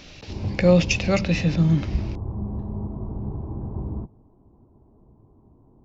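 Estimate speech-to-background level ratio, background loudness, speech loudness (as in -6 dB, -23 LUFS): 10.5 dB, -32.0 LUFS, -21.5 LUFS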